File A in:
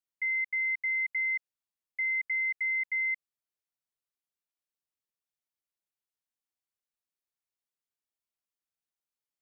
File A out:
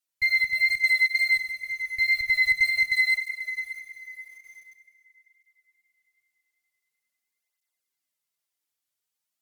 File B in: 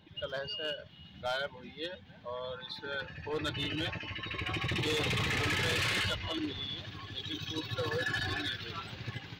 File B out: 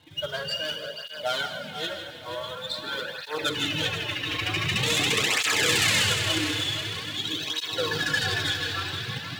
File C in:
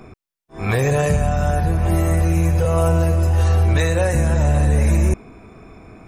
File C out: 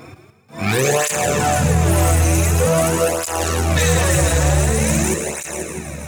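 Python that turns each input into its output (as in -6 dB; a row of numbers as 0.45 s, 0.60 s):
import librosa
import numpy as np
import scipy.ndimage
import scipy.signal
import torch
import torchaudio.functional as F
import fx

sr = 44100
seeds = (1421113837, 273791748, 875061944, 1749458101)

p1 = x + fx.echo_heads(x, sr, ms=162, heads='first and third', feedback_pct=59, wet_db=-10.0, dry=0)
p2 = fx.dynamic_eq(p1, sr, hz=7400.0, q=2.8, threshold_db=-53.0, ratio=4.0, max_db=7)
p3 = scipy.signal.sosfilt(scipy.signal.butter(4, 87.0, 'highpass', fs=sr, output='sos'), p2)
p4 = fx.high_shelf(p3, sr, hz=2400.0, db=7.5)
p5 = fx.hum_notches(p4, sr, base_hz=60, count=7)
p6 = fx.tube_stage(p5, sr, drive_db=21.0, bias=0.65)
p7 = fx.quant_companded(p6, sr, bits=4)
p8 = p6 + (p7 * librosa.db_to_amplitude(-9.0))
p9 = fx.wow_flutter(p8, sr, seeds[0], rate_hz=2.1, depth_cents=15.0)
p10 = fx.rev_schroeder(p9, sr, rt60_s=1.6, comb_ms=38, drr_db=9.0)
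p11 = fx.flanger_cancel(p10, sr, hz=0.46, depth_ms=5.3)
y = p11 * librosa.db_to_amplitude(7.5)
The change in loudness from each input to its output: +7.0 LU, +9.0 LU, +1.0 LU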